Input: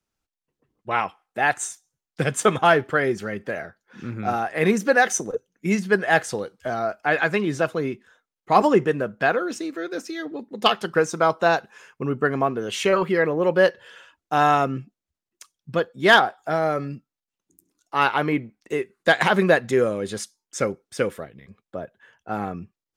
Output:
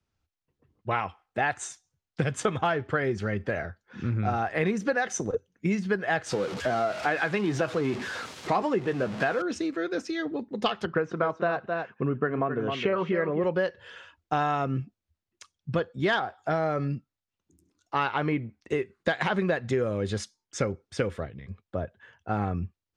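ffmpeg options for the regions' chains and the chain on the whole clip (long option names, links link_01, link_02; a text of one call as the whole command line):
ffmpeg -i in.wav -filter_complex "[0:a]asettb=1/sr,asplit=3[link_01][link_02][link_03];[link_01]atrim=end=6.264[link_04];[link_02]atrim=start=6.26:end=9.42,asetpts=PTS-STARTPTS,afade=type=in:duration=0.004:curve=qsin,afade=type=out:start_time=3.156:duration=0.004:curve=qsin,aeval=exprs='val(0)+0.5*0.0355*sgn(val(0))':channel_layout=same,highpass=160,asplit=2[link_05][link_06];[link_06]adelay=16,volume=-13.5dB[link_07];[link_05][link_07]amix=inputs=2:normalize=0,atrim=end_sample=139356[link_08];[link_03]atrim=start=9.416[link_09];[link_04][link_08]acrossfade=duration=0.004:curve1=hsin:curve2=qsin[link_10];[link_10][link_09]acrossfade=duration=0.004:curve1=qsin:curve2=hsin,asettb=1/sr,asplit=3[link_11][link_12][link_13];[link_11]atrim=end=10.854[link_14];[link_12]atrim=start=10.85:end=13.44,asetpts=PTS-STARTPTS,afade=type=in:duration=0.004:curve=qsin,afade=type=out:start_time=2.586:duration=0.004:curve=qsin,highpass=130,lowpass=2400,bandreject=frequency=850:width=9.7,aecho=1:1:263:0.316,atrim=end_sample=114219[link_15];[link_13]atrim=start=13.436[link_16];[link_14][link_15]acrossfade=duration=0.004:curve1=hsin:curve2=qsin[link_17];[link_17][link_16]acrossfade=duration=0.004:curve1=qsin:curve2=hsin,lowpass=5600,equalizer=frequency=85:width_type=o:width=1:gain=14.5,acompressor=threshold=-23dB:ratio=6" out.wav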